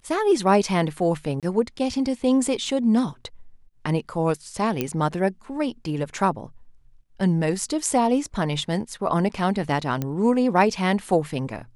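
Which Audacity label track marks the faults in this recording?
1.400000	1.430000	dropout 27 ms
4.810000	4.810000	pop -10 dBFS
10.020000	10.020000	pop -13 dBFS

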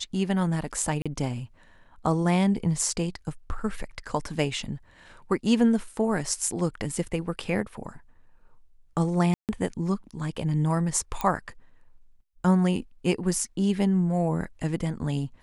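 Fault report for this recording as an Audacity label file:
1.020000	1.060000	dropout 36 ms
9.340000	9.490000	dropout 148 ms
11.210000	11.210000	pop -12 dBFS

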